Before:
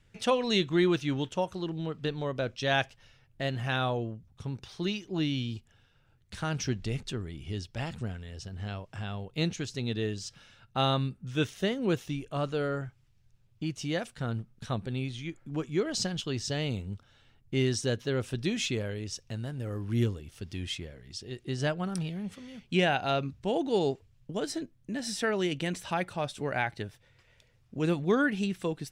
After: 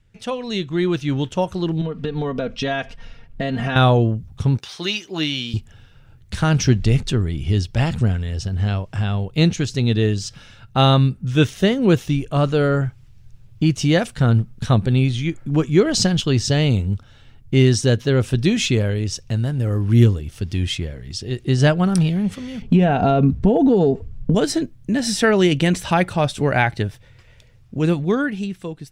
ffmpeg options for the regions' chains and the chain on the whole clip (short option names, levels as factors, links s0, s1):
-filter_complex "[0:a]asettb=1/sr,asplit=3[s0][s1][s2];[s0]atrim=end=1.814[s3];[s1]atrim=start=1.81:end=3.76,asetpts=PTS-STARTPTS,afade=t=in:d=0.004:c=qsin,afade=t=out:st=1.946:d=0.004:c=qsin,lowpass=f=2600:p=1,aecho=1:1:4.3:0.77,atrim=end_sample=85995,acompressor=threshold=0.0178:ratio=4:attack=3.2:release=140:knee=1:detection=peak[s4];[s2]atrim=start=3.756[s5];[s3][s4]acrossfade=d=0.004:c1=hsin:c2=qsin[s6];[s6][s5]acrossfade=d=0.004:c1=qsin:c2=hsin,asettb=1/sr,asplit=3[s7][s8][s9];[s7]atrim=end=4.584[s10];[s8]atrim=start=4.58:end=5.54,asetpts=PTS-STARTPTS,afade=t=in:d=0.004:c=qsin,afade=t=out:st=0.956:d=0.004:c=qsin,highpass=f=1100:p=1,asplit=2[s11][s12];[s12]adelay=13,volume=0.237[s13];[s11][s13]amix=inputs=2:normalize=0,atrim=end_sample=42336[s14];[s9]atrim=start=5.536[s15];[s10][s14]acrossfade=d=0.004:c1=hsin:c2=qsin[s16];[s16][s15]acrossfade=d=0.004:c1=qsin:c2=hsin,asettb=1/sr,asplit=3[s17][s18][s19];[s17]atrim=end=22.624[s20];[s18]atrim=start=22.62:end=24.35,asetpts=PTS-STARTPTS,afade=t=in:d=0.004:c=qsin,afade=t=out:st=1.726:d=0.004:c=qsin,tiltshelf=f=1400:g=9,aecho=1:1:4.4:0.45,atrim=end_sample=76293,acompressor=threshold=0.0501:ratio=10:attack=3.2:release=140:knee=1:detection=peak[s21];[s19]atrim=start=24.346[s22];[s20][s21]acrossfade=d=0.004:c1=hsin:c2=qsin[s23];[s23][s22]acrossfade=d=0.004:c1=qsin:c2=hsin,lowshelf=f=180:g=8.5,dynaudnorm=f=130:g=17:m=6.68,volume=0.891"